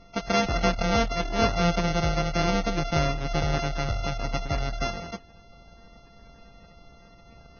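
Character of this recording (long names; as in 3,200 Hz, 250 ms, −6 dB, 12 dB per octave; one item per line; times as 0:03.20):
a buzz of ramps at a fixed pitch in blocks of 64 samples
Ogg Vorbis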